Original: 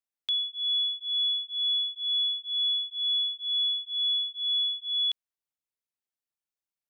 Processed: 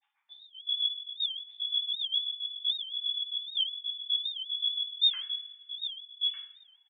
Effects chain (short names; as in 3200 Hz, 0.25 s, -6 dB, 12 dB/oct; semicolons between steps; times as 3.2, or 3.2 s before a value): sine-wave speech; spectral noise reduction 27 dB; upward compressor, threshold -39 dBFS; grains 72 ms, grains 7.6/s, spray 51 ms, pitch spread up and down by 0 st; echo 1.196 s -5.5 dB; two-slope reverb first 0.52 s, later 2 s, from -21 dB, DRR -6.5 dB; record warp 78 rpm, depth 160 cents; gain +6 dB